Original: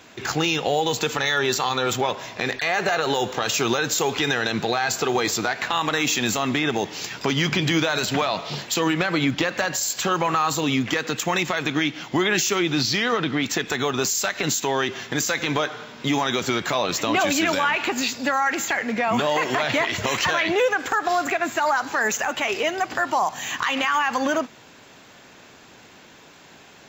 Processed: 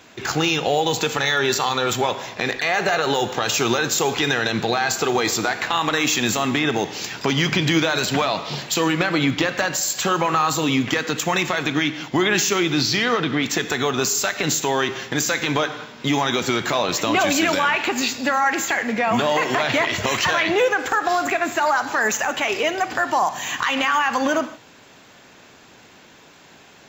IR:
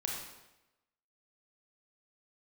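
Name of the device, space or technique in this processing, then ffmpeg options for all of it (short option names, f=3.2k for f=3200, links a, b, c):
keyed gated reverb: -filter_complex "[0:a]asplit=3[a][b][c];[1:a]atrim=start_sample=2205[d];[b][d]afir=irnorm=-1:irlink=0[e];[c]apad=whole_len=1185689[f];[e][f]sidechaingate=range=-33dB:threshold=-37dB:ratio=16:detection=peak,volume=-11dB[g];[a][g]amix=inputs=2:normalize=0"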